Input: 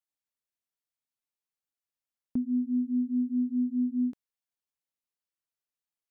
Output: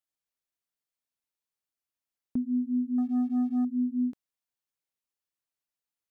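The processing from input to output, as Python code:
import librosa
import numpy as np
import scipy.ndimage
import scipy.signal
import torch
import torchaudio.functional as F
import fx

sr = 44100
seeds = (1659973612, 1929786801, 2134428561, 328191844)

y = fx.leveller(x, sr, passes=1, at=(2.98, 3.65))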